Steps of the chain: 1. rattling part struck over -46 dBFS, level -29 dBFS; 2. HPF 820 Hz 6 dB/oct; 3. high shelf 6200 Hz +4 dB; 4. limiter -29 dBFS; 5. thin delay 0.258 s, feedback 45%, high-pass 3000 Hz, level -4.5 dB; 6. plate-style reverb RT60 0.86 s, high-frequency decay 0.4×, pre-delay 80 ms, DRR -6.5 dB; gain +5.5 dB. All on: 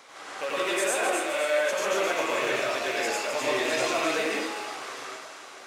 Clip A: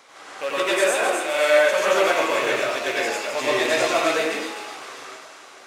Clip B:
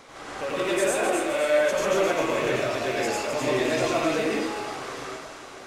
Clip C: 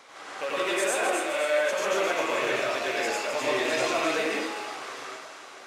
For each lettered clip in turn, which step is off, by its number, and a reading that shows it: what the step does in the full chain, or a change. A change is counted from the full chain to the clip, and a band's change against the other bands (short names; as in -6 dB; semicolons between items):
4, mean gain reduction 2.5 dB; 2, 125 Hz band +13.0 dB; 3, 8 kHz band -2.0 dB